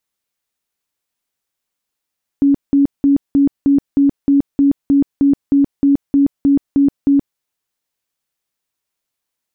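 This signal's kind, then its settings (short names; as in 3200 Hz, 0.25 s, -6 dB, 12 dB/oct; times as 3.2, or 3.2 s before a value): tone bursts 280 Hz, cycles 35, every 0.31 s, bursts 16, -8 dBFS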